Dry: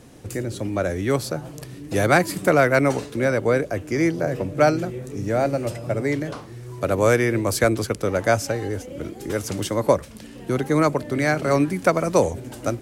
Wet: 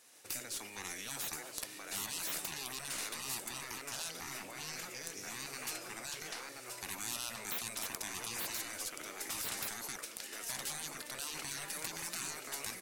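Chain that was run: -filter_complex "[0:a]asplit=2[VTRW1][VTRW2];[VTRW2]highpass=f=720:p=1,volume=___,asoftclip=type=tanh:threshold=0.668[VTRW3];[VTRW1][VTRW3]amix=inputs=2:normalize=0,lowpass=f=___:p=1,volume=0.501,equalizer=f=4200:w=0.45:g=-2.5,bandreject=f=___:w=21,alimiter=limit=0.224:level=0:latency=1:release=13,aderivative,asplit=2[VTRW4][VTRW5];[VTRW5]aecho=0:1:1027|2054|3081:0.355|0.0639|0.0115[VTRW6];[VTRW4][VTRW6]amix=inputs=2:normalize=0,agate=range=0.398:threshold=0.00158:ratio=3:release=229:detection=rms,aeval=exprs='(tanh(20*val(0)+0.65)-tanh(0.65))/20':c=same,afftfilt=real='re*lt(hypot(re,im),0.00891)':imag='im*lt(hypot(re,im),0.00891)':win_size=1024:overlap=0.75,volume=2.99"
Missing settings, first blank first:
3.16, 3100, 3200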